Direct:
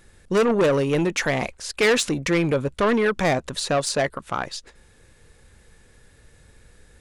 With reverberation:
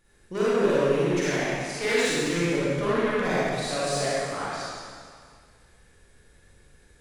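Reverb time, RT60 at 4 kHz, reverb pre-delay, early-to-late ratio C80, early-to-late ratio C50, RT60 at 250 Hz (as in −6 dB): 2.0 s, 1.9 s, 34 ms, −3.5 dB, −7.0 dB, 2.0 s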